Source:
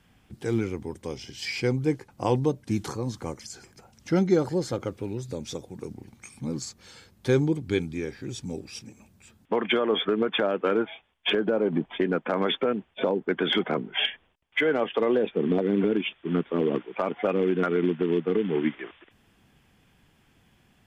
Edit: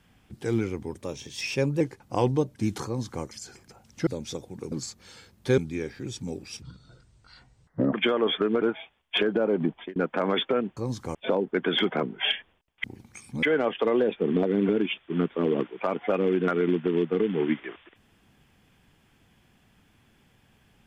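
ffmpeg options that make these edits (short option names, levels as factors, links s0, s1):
-filter_complex "[0:a]asplit=14[s0][s1][s2][s3][s4][s5][s6][s7][s8][s9][s10][s11][s12][s13];[s0]atrim=end=0.984[s14];[s1]atrim=start=0.98:end=1.89,asetpts=PTS-STARTPTS,asetrate=48510,aresample=44100[s15];[s2]atrim=start=1.886:end=4.152[s16];[s3]atrim=start=5.268:end=5.922[s17];[s4]atrim=start=6.508:end=7.372[s18];[s5]atrim=start=7.798:end=8.844[s19];[s6]atrim=start=8.84:end=9.6,asetpts=PTS-STARTPTS,asetrate=25578,aresample=44100,atrim=end_sample=57786,asetpts=PTS-STARTPTS[s20];[s7]atrim=start=9.596:end=10.292[s21];[s8]atrim=start=10.738:end=12.08,asetpts=PTS-STARTPTS,afade=t=out:st=1.072:d=0.27[s22];[s9]atrim=start=12.08:end=12.892,asetpts=PTS-STARTPTS,afade=t=in:d=0.004:c=hsin[s23];[s10]atrim=start=2.938:end=3.322[s24];[s11]atrim=start=12.888:end=14.582[s25];[s12]atrim=start=5.918:end=6.512[s26];[s13]atrim=start=14.578[s27];[s14][s15]acrossfade=d=0.004:c1=hsin:c2=hsin[s28];[s28][s16]acrossfade=d=0.004:c1=hsin:c2=hsin[s29];[s29][s17]acrossfade=d=0.004:c1=hsin:c2=hsin[s30];[s30][s18]acrossfade=d=0.004:c1=hsin:c2=hsin[s31];[s31][s19]acrossfade=d=0.004:c1=hsin:c2=hsin[s32];[s32][s20]acrossfade=d=0.004:c1=hsin:c2=hsin[s33];[s33][s21]acrossfade=d=0.004:c1=hsin:c2=hsin[s34];[s22][s23]concat=n=2:v=0:a=1[s35];[s34][s35]acrossfade=d=0.004:c1=hsin:c2=hsin[s36];[s36][s24]acrossfade=d=0.004:c1=hsin:c2=hsin[s37];[s37][s25]acrossfade=d=0.004:c1=hsin:c2=hsin[s38];[s38][s26]acrossfade=d=0.004:c1=hsin:c2=hsin[s39];[s39][s27]acrossfade=d=0.004:c1=hsin:c2=hsin"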